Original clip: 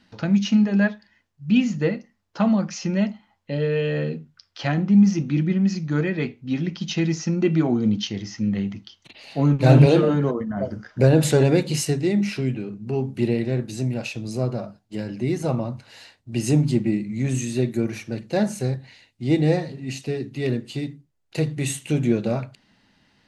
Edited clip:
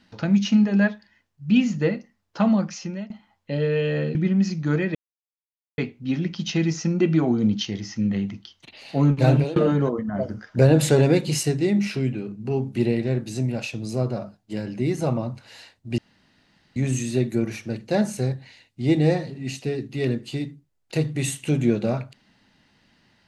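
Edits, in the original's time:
0:02.60–0:03.10: fade out, to −20.5 dB
0:04.15–0:05.40: remove
0:06.20: splice in silence 0.83 s
0:09.54–0:09.98: fade out, to −21 dB
0:16.40–0:17.18: fill with room tone

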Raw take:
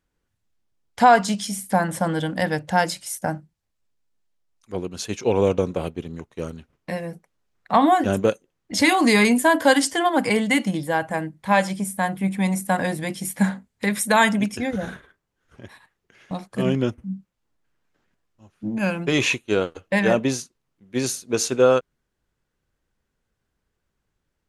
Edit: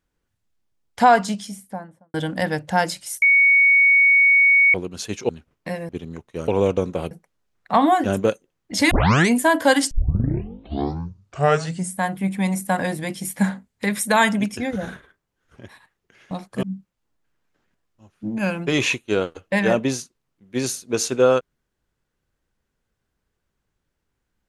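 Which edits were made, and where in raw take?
0:01.05–0:02.14: fade out and dull
0:03.22–0:04.74: beep over 2,230 Hz −11 dBFS
0:05.29–0:05.92: swap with 0:06.51–0:07.11
0:08.91: tape start 0.38 s
0:09.91: tape start 2.09 s
0:16.63–0:17.03: remove

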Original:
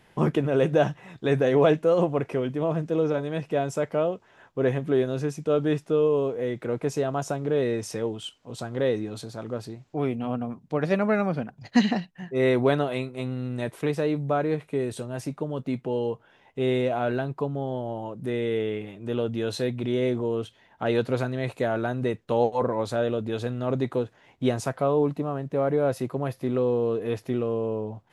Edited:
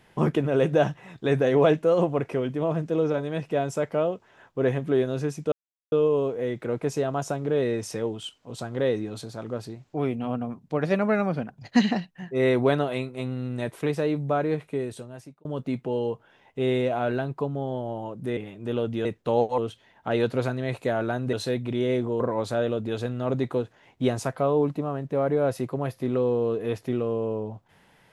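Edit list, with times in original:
0:05.52–0:05.92: silence
0:14.63–0:15.45: fade out linear
0:18.37–0:18.78: remove
0:19.46–0:20.33: swap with 0:22.08–0:22.61

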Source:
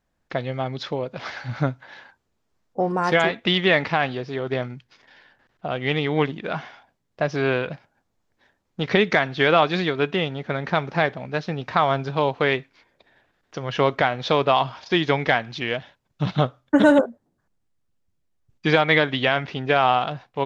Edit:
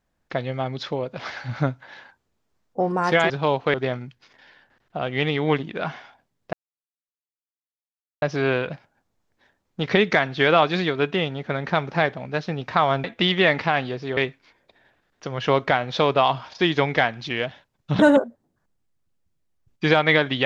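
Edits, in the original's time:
0:03.30–0:04.43: swap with 0:12.04–0:12.48
0:07.22: splice in silence 1.69 s
0:16.30–0:16.81: remove

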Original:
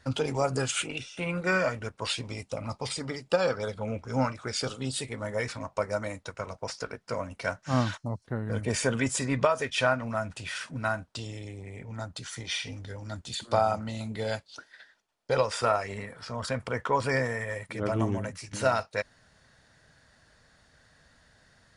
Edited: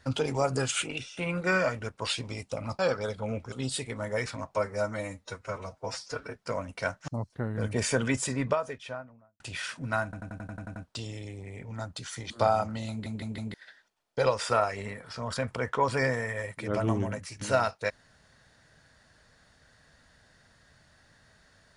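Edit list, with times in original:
0:02.79–0:03.38: remove
0:04.11–0:04.74: remove
0:05.77–0:06.97: time-stretch 1.5×
0:07.70–0:08.00: remove
0:08.96–0:10.32: fade out and dull
0:10.96: stutter 0.09 s, 9 plays
0:12.50–0:13.42: remove
0:14.02: stutter in place 0.16 s, 4 plays

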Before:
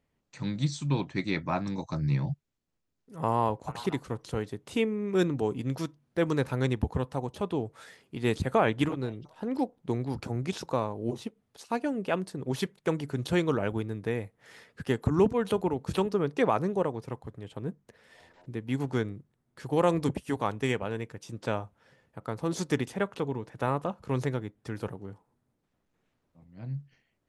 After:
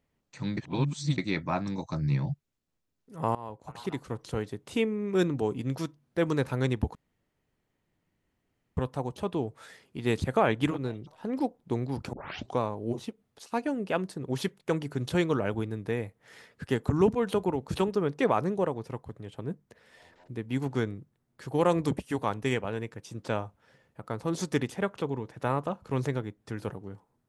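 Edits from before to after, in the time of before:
0:00.57–0:01.18: reverse
0:03.35–0:04.23: fade in, from −19.5 dB
0:06.95: splice in room tone 1.82 s
0:10.31: tape start 0.46 s

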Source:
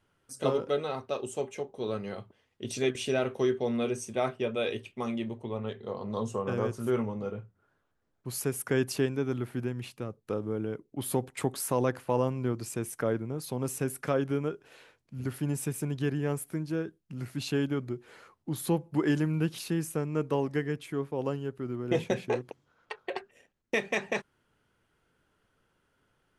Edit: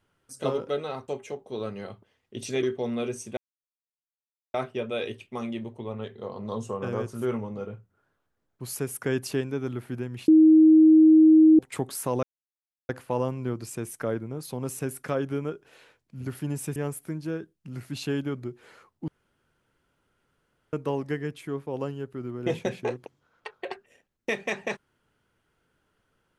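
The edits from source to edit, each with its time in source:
0:01.08–0:01.36: remove
0:02.91–0:03.45: remove
0:04.19: splice in silence 1.17 s
0:09.93–0:11.24: beep over 315 Hz −11.5 dBFS
0:11.88: splice in silence 0.66 s
0:15.75–0:16.21: remove
0:18.53–0:20.18: fill with room tone

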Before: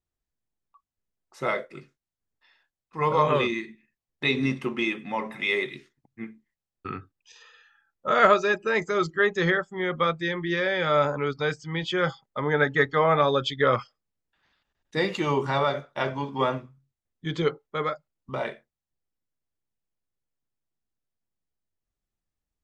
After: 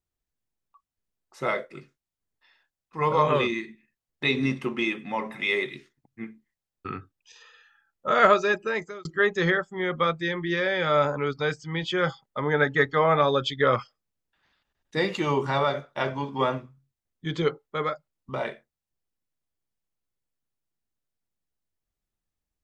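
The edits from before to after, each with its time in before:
0:08.58–0:09.05: fade out

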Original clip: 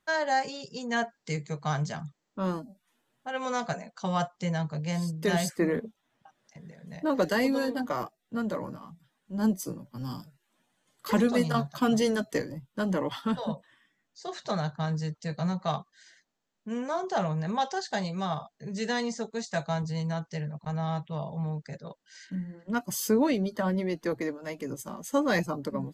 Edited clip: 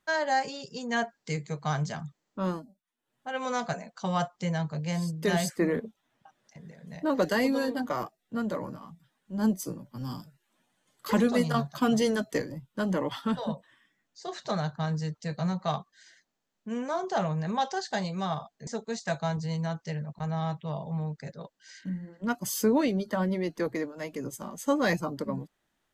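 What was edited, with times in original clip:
0:02.48–0:03.30: duck −17.5 dB, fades 0.33 s
0:18.67–0:19.13: remove

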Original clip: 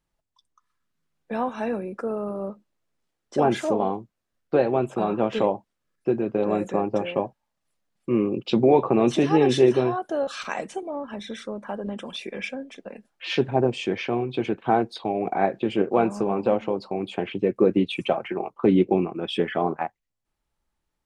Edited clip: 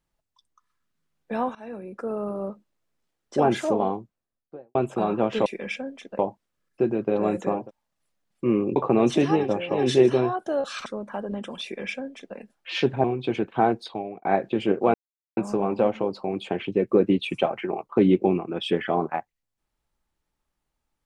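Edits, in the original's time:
0:01.55–0:02.22: fade in, from −19.5 dB
0:03.81–0:04.75: fade out and dull
0:06.86–0:07.24: move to 0:09.42, crossfade 0.24 s
0:08.41–0:08.77: remove
0:10.49–0:11.41: remove
0:12.19–0:12.92: duplicate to 0:05.46
0:13.59–0:14.14: remove
0:14.89–0:15.35: fade out
0:16.04: splice in silence 0.43 s

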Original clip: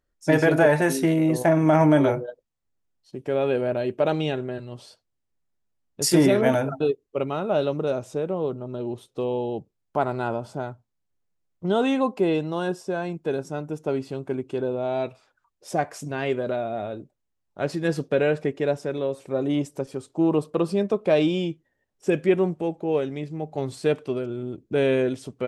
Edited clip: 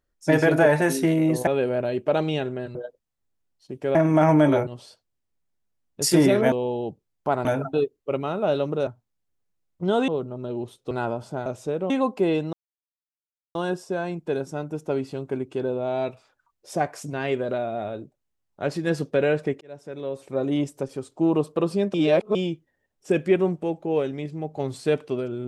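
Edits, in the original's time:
0:01.47–0:02.19: swap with 0:03.39–0:04.67
0:07.94–0:08.38: swap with 0:10.69–0:11.90
0:09.21–0:10.14: move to 0:06.52
0:12.53: splice in silence 1.02 s
0:18.59–0:19.35: fade in
0:20.92–0:21.33: reverse

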